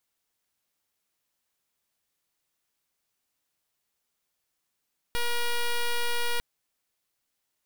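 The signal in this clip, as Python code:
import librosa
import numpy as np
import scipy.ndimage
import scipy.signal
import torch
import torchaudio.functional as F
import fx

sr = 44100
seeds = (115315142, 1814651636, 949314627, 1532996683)

y = fx.pulse(sr, length_s=1.25, hz=477.0, level_db=-26.0, duty_pct=7)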